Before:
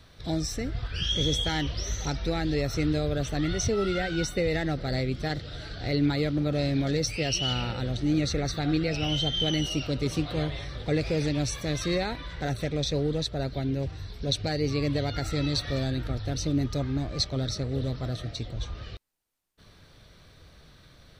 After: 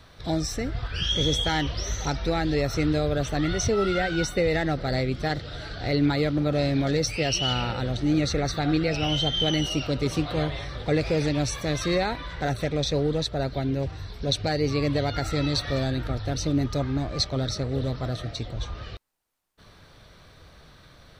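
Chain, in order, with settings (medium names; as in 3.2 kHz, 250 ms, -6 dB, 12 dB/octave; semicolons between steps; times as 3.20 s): peaking EQ 970 Hz +5 dB 1.8 oct; trim +1.5 dB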